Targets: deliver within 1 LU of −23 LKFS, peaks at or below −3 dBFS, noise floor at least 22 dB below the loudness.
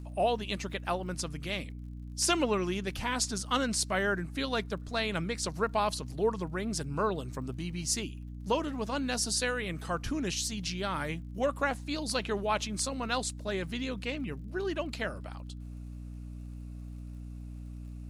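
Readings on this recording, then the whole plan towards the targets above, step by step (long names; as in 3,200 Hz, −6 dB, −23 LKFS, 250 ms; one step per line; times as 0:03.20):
crackle rate 47 per second; mains hum 60 Hz; hum harmonics up to 300 Hz; level of the hum −39 dBFS; integrated loudness −32.5 LKFS; sample peak −16.5 dBFS; target loudness −23.0 LKFS
→ click removal
mains-hum notches 60/120/180/240/300 Hz
level +9.5 dB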